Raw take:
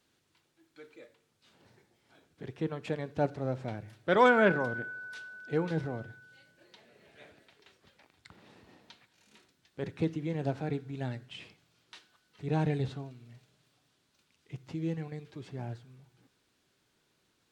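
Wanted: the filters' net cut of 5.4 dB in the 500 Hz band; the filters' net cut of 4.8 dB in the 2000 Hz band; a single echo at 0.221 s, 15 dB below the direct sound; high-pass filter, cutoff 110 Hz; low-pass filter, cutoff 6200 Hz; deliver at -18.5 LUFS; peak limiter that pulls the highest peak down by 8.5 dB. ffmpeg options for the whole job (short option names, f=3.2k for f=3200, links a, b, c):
-af "highpass=110,lowpass=6.2k,equalizer=f=500:t=o:g=-6,equalizer=f=2k:t=o:g=-7,alimiter=limit=-23.5dB:level=0:latency=1,aecho=1:1:221:0.178,volume=20dB"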